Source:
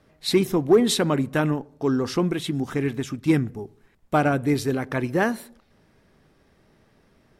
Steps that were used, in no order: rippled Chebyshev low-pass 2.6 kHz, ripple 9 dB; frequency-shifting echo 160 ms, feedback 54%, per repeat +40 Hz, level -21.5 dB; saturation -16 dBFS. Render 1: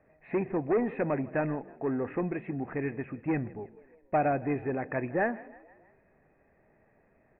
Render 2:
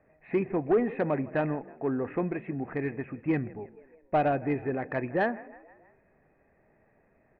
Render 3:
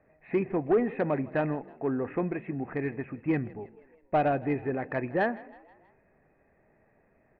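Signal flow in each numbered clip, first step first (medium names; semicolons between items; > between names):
saturation > frequency-shifting echo > rippled Chebyshev low-pass; frequency-shifting echo > rippled Chebyshev low-pass > saturation; rippled Chebyshev low-pass > saturation > frequency-shifting echo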